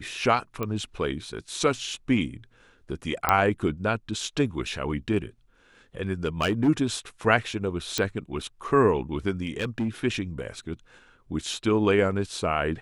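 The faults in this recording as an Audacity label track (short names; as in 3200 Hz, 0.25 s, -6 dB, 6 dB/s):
0.630000	0.630000	pop -16 dBFS
3.290000	3.290000	pop -6 dBFS
6.250000	6.690000	clipped -18.5 dBFS
7.980000	7.980000	pop -10 dBFS
9.410000	9.890000	clipped -22.5 dBFS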